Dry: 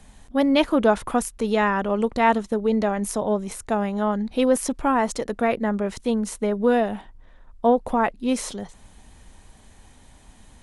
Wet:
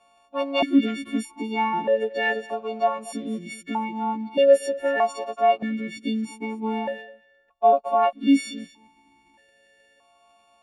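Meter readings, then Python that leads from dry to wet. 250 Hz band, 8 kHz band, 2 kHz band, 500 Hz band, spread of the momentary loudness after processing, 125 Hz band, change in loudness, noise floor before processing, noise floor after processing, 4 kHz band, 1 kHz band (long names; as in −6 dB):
−2.5 dB, −9.0 dB, −1.0 dB, −0.5 dB, 12 LU, can't be measured, −1.0 dB, −51 dBFS, −61 dBFS, 0.0 dB, 0.0 dB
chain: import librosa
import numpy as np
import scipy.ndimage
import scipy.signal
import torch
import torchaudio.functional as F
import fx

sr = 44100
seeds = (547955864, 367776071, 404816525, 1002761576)

y = fx.freq_snap(x, sr, grid_st=4)
y = fx.leveller(y, sr, passes=1)
y = y + 10.0 ** (-19.5 / 20.0) * np.pad(y, (int(233 * sr / 1000.0), 0))[:len(y)]
y = fx.vowel_held(y, sr, hz=1.6)
y = F.gain(torch.from_numpy(y), 4.5).numpy()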